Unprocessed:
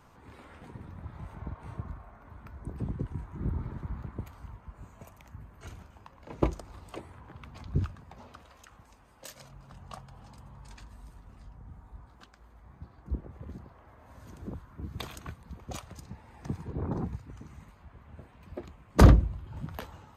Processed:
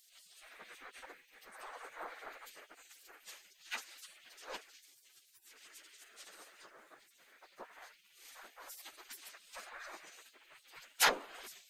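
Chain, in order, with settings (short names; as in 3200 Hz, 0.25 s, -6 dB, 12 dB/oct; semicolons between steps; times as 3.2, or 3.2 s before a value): spectral gate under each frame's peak -30 dB weak; plain phase-vocoder stretch 0.58×; gain +15 dB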